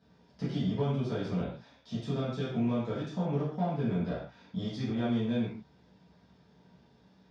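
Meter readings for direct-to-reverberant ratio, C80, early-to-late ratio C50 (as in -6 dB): -11.5 dB, 5.5 dB, 1.5 dB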